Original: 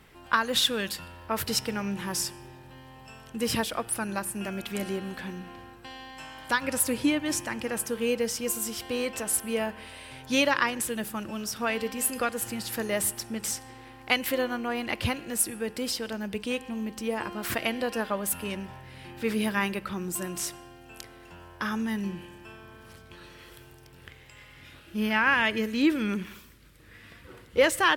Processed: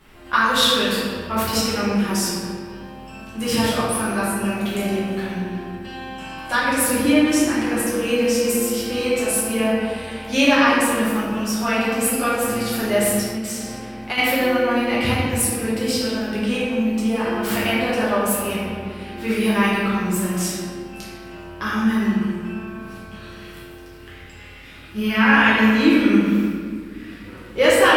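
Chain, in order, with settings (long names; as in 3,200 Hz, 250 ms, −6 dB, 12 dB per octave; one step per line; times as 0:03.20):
convolution reverb RT60 2.0 s, pre-delay 5 ms, DRR −9.5 dB
0:13.28–0:14.18: downward compressor 6 to 1, threshold −23 dBFS, peak gain reduction 8 dB
level −1 dB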